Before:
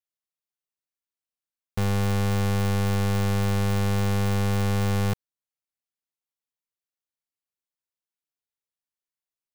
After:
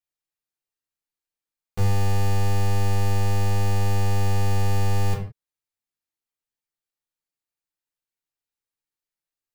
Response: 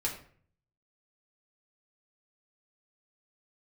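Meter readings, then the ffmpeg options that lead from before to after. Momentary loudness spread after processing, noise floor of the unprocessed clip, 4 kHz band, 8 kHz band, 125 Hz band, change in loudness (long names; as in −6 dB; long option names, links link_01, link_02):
3 LU, below −85 dBFS, −1.5 dB, +0.5 dB, +1.5 dB, +0.5 dB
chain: -filter_complex "[1:a]atrim=start_sample=2205,afade=type=out:start_time=0.23:duration=0.01,atrim=end_sample=10584[link_01];[0:a][link_01]afir=irnorm=-1:irlink=0,volume=-3dB"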